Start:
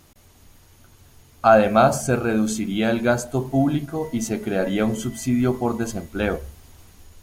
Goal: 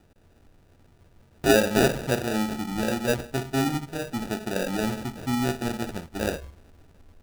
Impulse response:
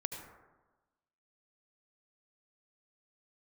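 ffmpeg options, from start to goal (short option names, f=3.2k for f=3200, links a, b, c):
-af "acrusher=samples=41:mix=1:aa=0.000001,volume=-5.5dB"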